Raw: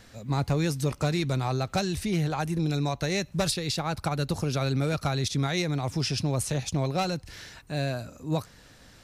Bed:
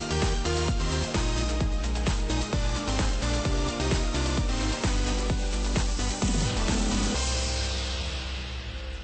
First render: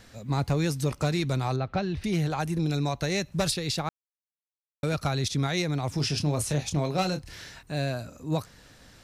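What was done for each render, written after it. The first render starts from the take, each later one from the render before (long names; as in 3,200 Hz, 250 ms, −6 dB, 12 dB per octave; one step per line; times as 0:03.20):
0:01.56–0:02.04: high-frequency loss of the air 290 metres
0:03.89–0:04.83: silence
0:05.95–0:07.63: double-tracking delay 27 ms −8.5 dB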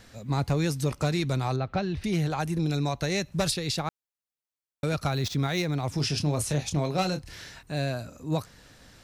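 0:05.10–0:05.88: running median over 5 samples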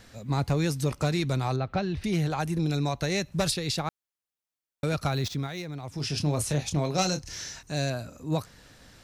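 0:05.19–0:06.24: duck −8.5 dB, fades 0.34 s linear
0:06.94–0:07.90: parametric band 6,100 Hz +14.5 dB 0.56 octaves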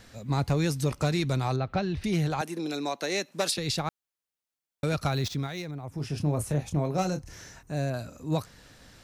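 0:02.41–0:03.58: high-pass filter 250 Hz 24 dB per octave
0:05.71–0:07.94: parametric band 4,500 Hz −13 dB 2 octaves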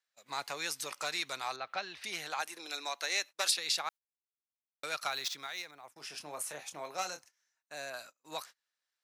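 noise gate −39 dBFS, range −32 dB
high-pass filter 1,100 Hz 12 dB per octave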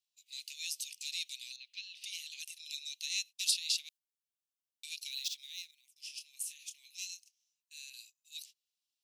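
elliptic high-pass filter 2,700 Hz, stop band 50 dB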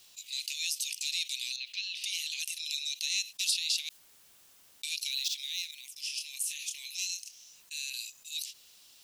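envelope flattener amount 50%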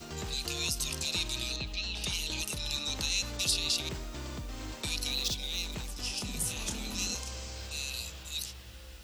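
mix in bed −13.5 dB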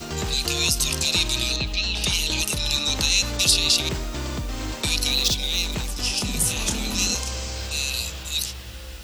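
level +11 dB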